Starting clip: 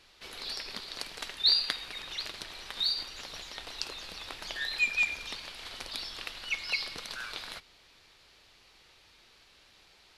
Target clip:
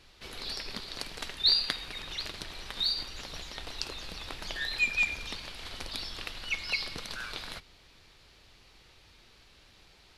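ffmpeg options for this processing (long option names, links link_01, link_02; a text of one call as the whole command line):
ffmpeg -i in.wav -af "lowshelf=frequency=270:gain=10" out.wav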